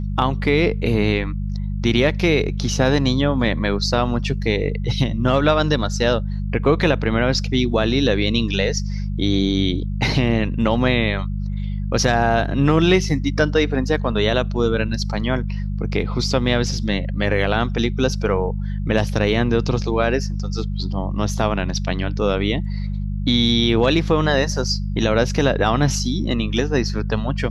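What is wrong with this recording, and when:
hum 50 Hz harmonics 4 -24 dBFS

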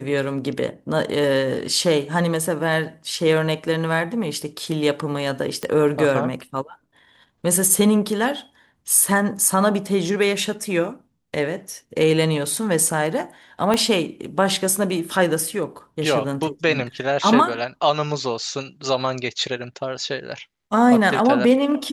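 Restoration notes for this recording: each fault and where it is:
5.63 s: pop -12 dBFS
13.74 s: pop -7 dBFS

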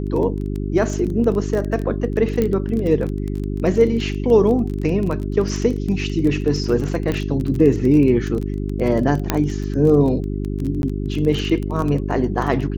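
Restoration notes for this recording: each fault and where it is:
crackle 19 per s -23 dBFS
hum 50 Hz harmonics 8 -24 dBFS
2.42 s: pop -9 dBFS
7.12 s: pop -11 dBFS
9.30 s: pop -2 dBFS
10.82–10.83 s: dropout 11 ms

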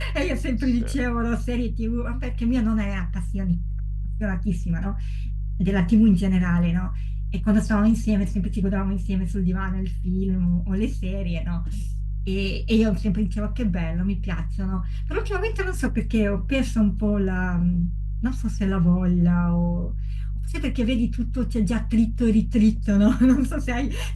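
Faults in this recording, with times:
hum 50 Hz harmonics 3 -27 dBFS

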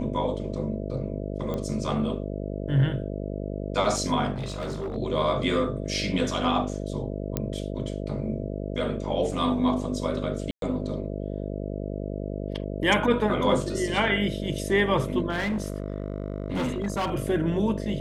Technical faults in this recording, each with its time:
buzz 50 Hz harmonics 13 -32 dBFS
1.54 s: pop -19 dBFS
4.34–4.96 s: clipped -27.5 dBFS
7.37 s: pop -12 dBFS
10.51–10.62 s: dropout 112 ms
15.29–17.10 s: clipped -23.5 dBFS

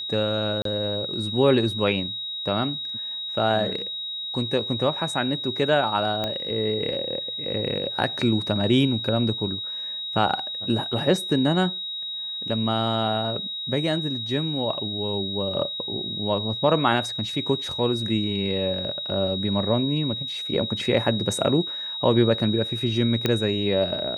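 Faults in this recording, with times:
whine 3.8 kHz -29 dBFS
0.62–0.65 s: dropout 33 ms
6.24 s: pop -13 dBFS
23.26 s: pop -8 dBFS

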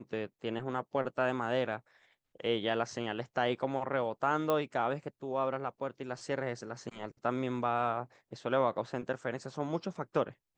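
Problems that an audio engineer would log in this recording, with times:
4.50 s: pop -17 dBFS

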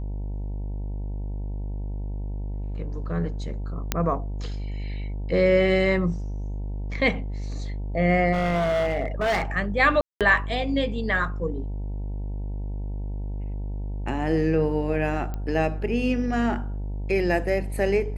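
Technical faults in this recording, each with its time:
buzz 50 Hz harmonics 19 -30 dBFS
3.92 s: pop -7 dBFS
8.32–9.44 s: clipped -20 dBFS
10.01–10.21 s: dropout 197 ms
15.34 s: pop -20 dBFS

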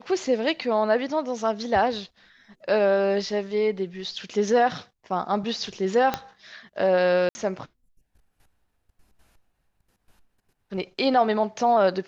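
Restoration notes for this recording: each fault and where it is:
6.14 s: pop -10 dBFS
7.29–7.35 s: dropout 60 ms

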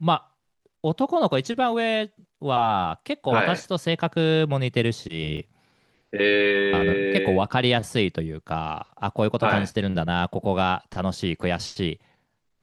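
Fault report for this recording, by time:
5.37 s: dropout 4.4 ms

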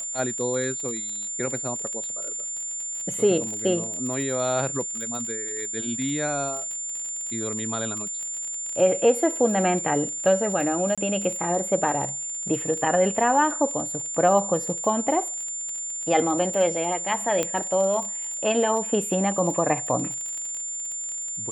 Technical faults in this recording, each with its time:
crackle 36 per s -30 dBFS
whine 7.2 kHz -29 dBFS
10.95–10.98 s: dropout 26 ms
17.43 s: pop -10 dBFS

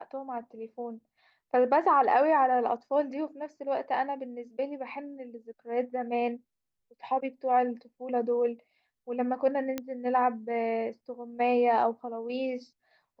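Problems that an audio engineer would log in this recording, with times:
9.78 s: pop -18 dBFS

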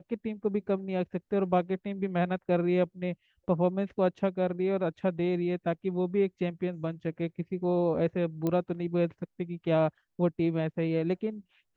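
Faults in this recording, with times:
8.47 s: pop -18 dBFS

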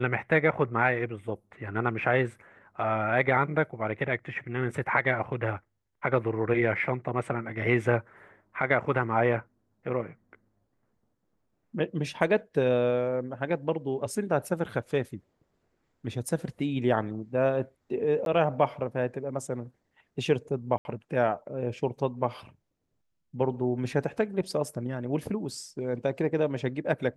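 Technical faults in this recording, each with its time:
18.25–18.26 s: dropout 12 ms
20.78–20.85 s: dropout 71 ms

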